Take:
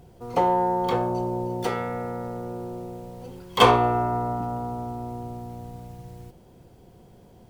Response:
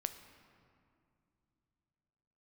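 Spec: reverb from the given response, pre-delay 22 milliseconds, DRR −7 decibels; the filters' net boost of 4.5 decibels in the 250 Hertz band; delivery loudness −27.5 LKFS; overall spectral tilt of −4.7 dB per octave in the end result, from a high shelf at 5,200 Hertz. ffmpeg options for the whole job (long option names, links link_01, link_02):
-filter_complex "[0:a]equalizer=frequency=250:width_type=o:gain=6,highshelf=frequency=5200:gain=-6,asplit=2[link_01][link_02];[1:a]atrim=start_sample=2205,adelay=22[link_03];[link_02][link_03]afir=irnorm=-1:irlink=0,volume=7.5dB[link_04];[link_01][link_04]amix=inputs=2:normalize=0,volume=-11.5dB"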